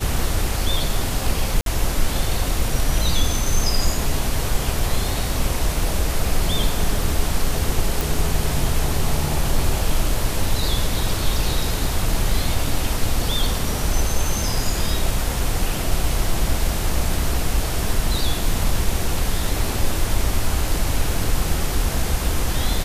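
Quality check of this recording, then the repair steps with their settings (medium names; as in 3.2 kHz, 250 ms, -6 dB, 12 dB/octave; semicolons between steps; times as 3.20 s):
1.61–1.66 s: dropout 52 ms
8.01 s: pop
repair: de-click; interpolate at 1.61 s, 52 ms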